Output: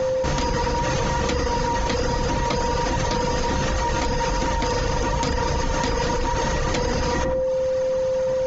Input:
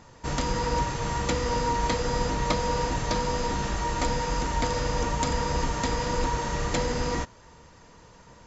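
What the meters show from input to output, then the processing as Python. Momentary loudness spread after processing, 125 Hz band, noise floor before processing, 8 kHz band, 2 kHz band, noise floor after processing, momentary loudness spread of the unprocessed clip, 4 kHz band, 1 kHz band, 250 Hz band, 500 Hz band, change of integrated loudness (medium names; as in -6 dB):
1 LU, +4.5 dB, -52 dBFS, no reading, +5.0 dB, -24 dBFS, 3 LU, +4.5 dB, +4.0 dB, +4.5 dB, +8.5 dB, +4.5 dB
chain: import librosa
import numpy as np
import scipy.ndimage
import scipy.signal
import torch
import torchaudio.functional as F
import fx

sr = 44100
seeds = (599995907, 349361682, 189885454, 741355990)

p1 = fx.dereverb_blind(x, sr, rt60_s=0.7)
p2 = scipy.signal.sosfilt(scipy.signal.ellip(4, 1.0, 40, 6600.0, 'lowpass', fs=sr, output='sos'), p1)
p3 = p2 + 10.0 ** (-40.0 / 20.0) * np.sin(2.0 * np.pi * 520.0 * np.arange(len(p2)) / sr)
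p4 = p3 + fx.echo_filtered(p3, sr, ms=100, feedback_pct=36, hz=1000.0, wet_db=-10, dry=0)
p5 = fx.env_flatten(p4, sr, amount_pct=100)
y = p5 * librosa.db_to_amplitude(1.5)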